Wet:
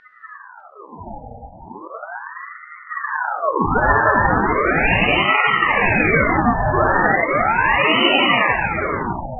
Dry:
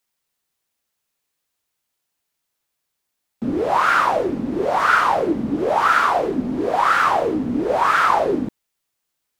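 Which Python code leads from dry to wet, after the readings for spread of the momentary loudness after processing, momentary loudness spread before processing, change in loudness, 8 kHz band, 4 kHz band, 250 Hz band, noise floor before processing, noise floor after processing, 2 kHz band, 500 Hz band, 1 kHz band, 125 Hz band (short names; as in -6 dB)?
19 LU, 8 LU, +2.5 dB, under -40 dB, +11.0 dB, +1.0 dB, -78 dBFS, -42 dBFS, +7.0 dB, +1.5 dB, +1.0 dB, +11.0 dB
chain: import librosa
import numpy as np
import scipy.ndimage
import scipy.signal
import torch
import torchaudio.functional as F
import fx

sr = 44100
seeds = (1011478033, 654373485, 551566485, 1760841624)

p1 = fx.dmg_wind(x, sr, seeds[0], corner_hz=500.0, level_db=-23.0)
p2 = fx.leveller(p1, sr, passes=3)
p3 = fx.over_compress(p2, sr, threshold_db=-7.0, ratio=-1.0)
p4 = p2 + (p3 * librosa.db_to_amplitude(0.5))
p5 = fx.spec_topn(p4, sr, count=2)
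p6 = fx.bandpass_edges(p5, sr, low_hz=250.0, high_hz=3100.0)
p7 = p6 + fx.echo_single(p6, sr, ms=603, db=-9.5, dry=0)
p8 = fx.rev_gated(p7, sr, seeds[1], gate_ms=380, shape='flat', drr_db=-3.5)
p9 = fx.ring_lfo(p8, sr, carrier_hz=1000.0, swing_pct=65, hz=0.37)
y = p9 * librosa.db_to_amplitude(-9.5)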